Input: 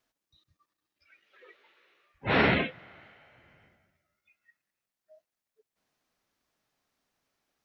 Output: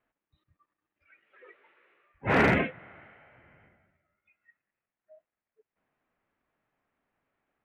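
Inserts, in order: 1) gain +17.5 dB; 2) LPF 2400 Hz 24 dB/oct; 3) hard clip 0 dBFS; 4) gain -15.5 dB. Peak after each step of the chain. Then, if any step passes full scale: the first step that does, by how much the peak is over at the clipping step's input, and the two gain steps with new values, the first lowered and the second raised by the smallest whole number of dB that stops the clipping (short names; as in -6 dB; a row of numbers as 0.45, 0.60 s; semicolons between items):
+5.5, +5.5, 0.0, -15.5 dBFS; step 1, 5.5 dB; step 1 +11.5 dB, step 4 -9.5 dB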